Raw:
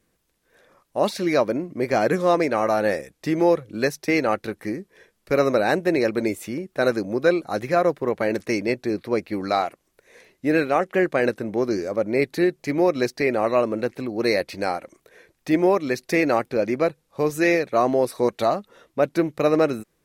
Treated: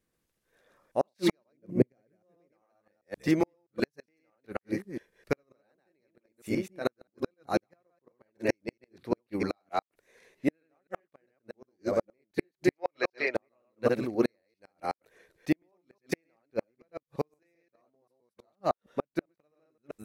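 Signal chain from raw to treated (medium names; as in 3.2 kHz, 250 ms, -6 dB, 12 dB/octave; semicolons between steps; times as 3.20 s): chunks repeated in reverse 131 ms, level -1 dB; 6.68–7.47 s: trance gate "xx..x.x." 184 bpm -12 dB; 12.71–13.35 s: three-band isolator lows -20 dB, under 500 Hz, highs -21 dB, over 5.2 kHz; inverted gate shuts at -11 dBFS, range -42 dB; 1.52–2.53 s: ten-band graphic EQ 125 Hz +8 dB, 250 Hz +3 dB, 500 Hz +4 dB, 1 kHz -8 dB, 4 kHz -6 dB; upward expansion 1.5:1, over -40 dBFS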